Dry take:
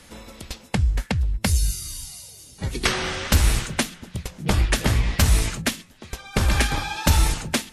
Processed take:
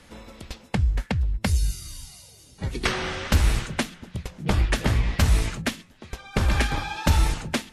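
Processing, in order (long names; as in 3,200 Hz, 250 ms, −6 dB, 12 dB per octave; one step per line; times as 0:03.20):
high-shelf EQ 5,200 Hz −9 dB
level −1.5 dB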